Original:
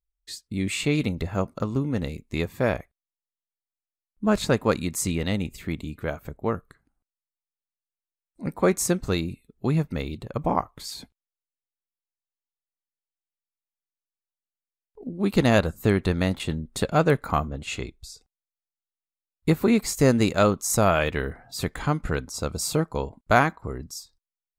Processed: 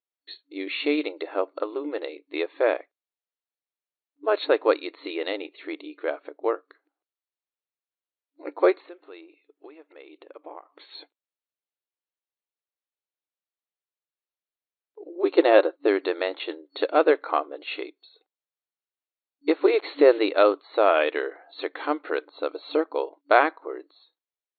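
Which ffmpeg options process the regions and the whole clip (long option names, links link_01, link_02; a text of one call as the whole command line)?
ffmpeg -i in.wav -filter_complex "[0:a]asettb=1/sr,asplit=3[link_01][link_02][link_03];[link_01]atrim=end=8.804[link_04];[link_02]atrim=start=8.8:end=10.94,asetpts=PTS-STARTPTS,afade=type=in:duration=0.004:curve=qsin,afade=type=out:start_time=2.136:duration=0.004:curve=qsin,highshelf=frequency=4000:width_type=q:width=1.5:gain=-10.5,acompressor=threshold=-41dB:ratio=4:attack=3.2:release=140:knee=1:detection=peak[link_05];[link_03]atrim=start=10.936[link_06];[link_04][link_05]acrossfade=duration=0.004:curve1=hsin:curve2=qsin[link_07];[link_07][link_06]acrossfade=duration=0.004:curve1=qsin:curve2=hsin,asettb=1/sr,asplit=3[link_08][link_09][link_10];[link_08]atrim=end=15.154[link_11];[link_09]atrim=start=15.15:end=15.88,asetpts=PTS-STARTPTS,afade=type=in:duration=0.004:curve=qsin,afade=type=out:start_time=0.726:duration=0.004:curve=qsin,agate=range=-33dB:threshold=-37dB:ratio=3:release=100:detection=peak,tiltshelf=frequency=1200:gain=3.5,aecho=1:1:5.6:0.35,atrim=end_sample=32193[link_12];[link_10]atrim=start=15.876[link_13];[link_11][link_12]acrossfade=duration=0.004:curve1=hsin:curve2=qsin[link_14];[link_14][link_13]acrossfade=duration=0.004:curve1=qsin:curve2=hsin,asettb=1/sr,asplit=3[link_15][link_16][link_17];[link_15]atrim=end=19.654[link_18];[link_16]atrim=start=19.65:end=20.19,asetpts=PTS-STARTPTS,afade=type=in:duration=0.004:curve=qsin,afade=type=out:start_time=0.536:duration=0.004:curve=qsin,lowshelf=frequency=320:gain=9,acompressor=mode=upward:threshold=-16dB:ratio=2.5:attack=3.2:release=140:knee=2.83:detection=peak,acrusher=bits=5:mix=0:aa=0.5[link_19];[link_17]atrim=start=20.186[link_20];[link_18][link_19]acrossfade=duration=0.004:curve1=hsin:curve2=qsin[link_21];[link_21][link_20]acrossfade=duration=0.004:curve1=qsin:curve2=hsin,afftfilt=real='re*between(b*sr/4096,290,4400)':imag='im*between(b*sr/4096,290,4400)':win_size=4096:overlap=0.75,equalizer=frequency=520:width_type=o:width=0.84:gain=4" out.wav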